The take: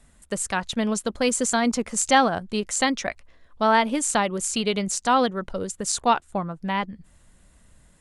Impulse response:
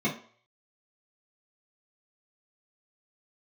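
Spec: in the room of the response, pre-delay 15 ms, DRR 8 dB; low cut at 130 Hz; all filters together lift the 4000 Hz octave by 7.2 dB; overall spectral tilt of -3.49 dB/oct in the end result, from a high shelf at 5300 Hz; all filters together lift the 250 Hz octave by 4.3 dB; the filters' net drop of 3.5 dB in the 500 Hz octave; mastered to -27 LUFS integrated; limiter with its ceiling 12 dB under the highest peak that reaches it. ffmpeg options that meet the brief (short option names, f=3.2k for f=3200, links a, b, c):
-filter_complex "[0:a]highpass=130,equalizer=f=250:t=o:g=6.5,equalizer=f=500:t=o:g=-6,equalizer=f=4k:t=o:g=7.5,highshelf=f=5.3k:g=4.5,alimiter=limit=-12.5dB:level=0:latency=1,asplit=2[a][b];[1:a]atrim=start_sample=2205,adelay=15[c];[b][c]afir=irnorm=-1:irlink=0,volume=-18dB[d];[a][d]amix=inputs=2:normalize=0,volume=-6dB"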